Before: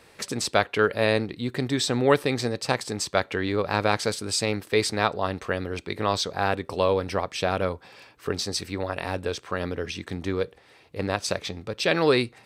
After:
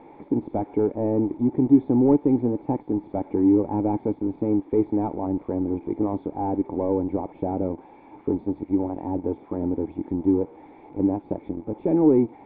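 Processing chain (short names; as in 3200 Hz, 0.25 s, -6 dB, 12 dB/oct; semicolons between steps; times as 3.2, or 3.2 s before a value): switching spikes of -12.5 dBFS; in parallel at -6 dB: bit-crush 5-bit; on the sum: sample leveller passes 3; vocal tract filter u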